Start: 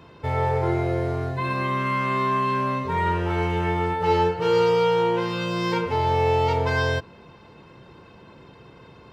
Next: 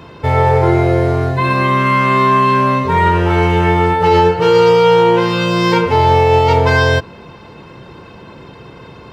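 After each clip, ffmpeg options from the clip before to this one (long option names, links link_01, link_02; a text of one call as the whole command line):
ffmpeg -i in.wav -af "alimiter=level_in=12.5dB:limit=-1dB:release=50:level=0:latency=1,volume=-1dB" out.wav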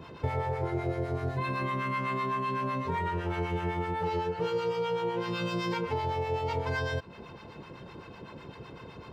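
ffmpeg -i in.wav -filter_complex "[0:a]acompressor=threshold=-19dB:ratio=6,acrossover=split=750[link_01][link_02];[link_01]aeval=exprs='val(0)*(1-0.7/2+0.7/2*cos(2*PI*7.9*n/s))':channel_layout=same[link_03];[link_02]aeval=exprs='val(0)*(1-0.7/2-0.7/2*cos(2*PI*7.9*n/s))':channel_layout=same[link_04];[link_03][link_04]amix=inputs=2:normalize=0,volume=-6.5dB" out.wav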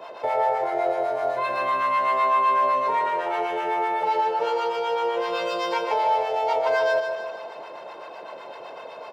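ffmpeg -i in.wav -af "highpass=frequency=640:width_type=q:width=4.9,aecho=1:1:152|304|456|608|760|912:0.447|0.237|0.125|0.0665|0.0352|0.0187,volume=4.5dB" out.wav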